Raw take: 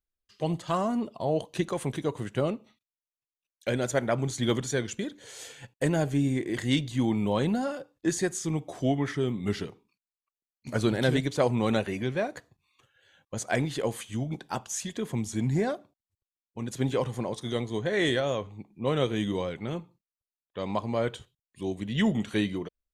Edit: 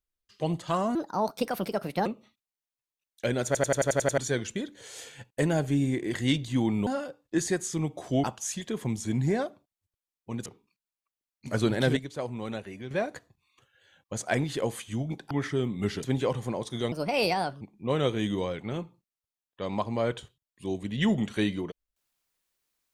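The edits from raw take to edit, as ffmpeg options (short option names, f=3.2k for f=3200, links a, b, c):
-filter_complex "[0:a]asplit=20[a][b][c][d][e][f][g][h][i][j][k][l][m][n][o][p][q][r][s][t];[a]atrim=end=0.954[u];[b]atrim=start=0.95:end=2.49,asetpts=PTS-STARTPTS,asetrate=61299,aresample=44100[v];[c]atrim=start=2.486:end=3.982[w];[d]atrim=start=3.888:end=3.982[x];[e]atrim=start=3.888:end=3.982[y];[f]atrim=start=3.888:end=3.982[z];[g]atrim=start=3.888:end=3.982[aa];[h]atrim=start=3.888:end=3.982[ab];[i]atrim=start=3.888:end=3.982[ac];[j]atrim=start=3.888:end=3.982[ad];[k]atrim=start=4.608:end=7.302[ae];[l]atrim=start=7.578:end=8.952[af];[m]atrim=start=14.518:end=16.742[ag];[n]atrim=start=9.668:end=11.182[ah];[o]atrim=start=11.178:end=12.122,asetpts=PTS-STARTPTS,volume=-9.5dB[ai];[p]atrim=start=12.118:end=14.522[aj];[q]atrim=start=8.948:end=9.672[ak];[r]atrim=start=16.738:end=17.634[al];[s]atrim=start=17.63:end=18.58,asetpts=PTS-STARTPTS,asetrate=60417,aresample=44100,atrim=end_sample=30580,asetpts=PTS-STARTPTS[am];[t]atrim=start=18.576[an];[u][v]acrossfade=d=0.004:c1=hsin:c2=hsin[ao];[ao][w]acrossfade=d=0.004:c1=hsin:c2=hsin[ap];[ap][x]acrossfade=d=0.004:c1=hsin:c2=hsin[aq];[aq][y]acrossfade=d=0.004:c1=hsin:c2=hsin[ar];[ar][z]acrossfade=d=0.004:c1=hsin:c2=hsin[as];[as][aa]acrossfade=d=0.004:c1=hsin:c2=hsin[at];[at][ab]acrossfade=d=0.004:c1=hsin:c2=hsin[au];[au][ac]acrossfade=d=0.004:c1=hsin:c2=hsin[av];[av][ad]acrossfade=d=0.004:c1=hsin:c2=hsin[aw];[aw][ae]acrossfade=d=0.004:c1=hsin:c2=hsin[ax];[ax][af]acrossfade=d=0.004:c1=hsin:c2=hsin[ay];[ay][ag]acrossfade=d=0.004:c1=hsin:c2=hsin[az];[az][ah]acrossfade=d=0.004:c1=hsin:c2=hsin[ba];[ba][ai]acrossfade=d=0.004:c1=hsin:c2=hsin[bb];[bb][aj]acrossfade=d=0.004:c1=hsin:c2=hsin[bc];[bc][ak]acrossfade=d=0.004:c1=hsin:c2=hsin[bd];[bd][al]acrossfade=d=0.004:c1=hsin:c2=hsin[be];[be][am]acrossfade=d=0.004:c1=hsin:c2=hsin[bf];[bf][an]acrossfade=d=0.004:c1=hsin:c2=hsin"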